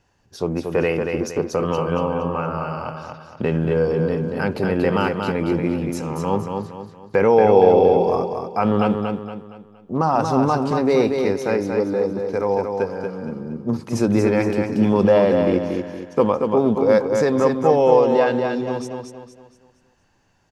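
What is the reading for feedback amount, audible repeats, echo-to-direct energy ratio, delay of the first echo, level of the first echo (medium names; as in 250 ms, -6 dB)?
39%, 4, -4.5 dB, 233 ms, -5.0 dB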